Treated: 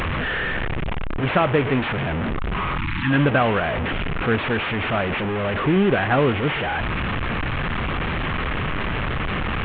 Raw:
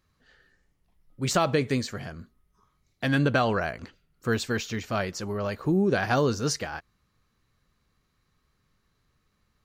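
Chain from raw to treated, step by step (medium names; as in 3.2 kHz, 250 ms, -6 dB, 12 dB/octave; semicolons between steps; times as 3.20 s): one-bit delta coder 16 kbps, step -22.5 dBFS; spectral selection erased 2.78–3.10 s, 360–830 Hz; trim +5 dB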